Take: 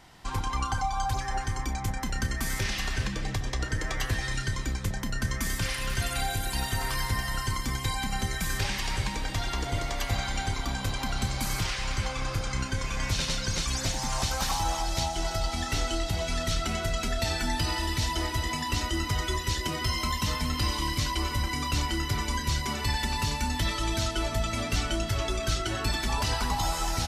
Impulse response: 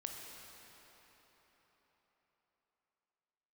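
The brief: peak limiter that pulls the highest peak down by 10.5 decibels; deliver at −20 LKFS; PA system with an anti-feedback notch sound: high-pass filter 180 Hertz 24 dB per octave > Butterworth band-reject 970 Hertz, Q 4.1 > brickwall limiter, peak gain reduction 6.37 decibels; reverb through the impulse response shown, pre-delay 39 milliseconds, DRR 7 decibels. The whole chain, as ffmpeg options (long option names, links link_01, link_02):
-filter_complex "[0:a]alimiter=level_in=2.5dB:limit=-24dB:level=0:latency=1,volume=-2.5dB,asplit=2[link_01][link_02];[1:a]atrim=start_sample=2205,adelay=39[link_03];[link_02][link_03]afir=irnorm=-1:irlink=0,volume=-5.5dB[link_04];[link_01][link_04]amix=inputs=2:normalize=0,highpass=frequency=180:width=0.5412,highpass=frequency=180:width=1.3066,asuperstop=centerf=970:order=8:qfactor=4.1,volume=18.5dB,alimiter=limit=-11.5dB:level=0:latency=1"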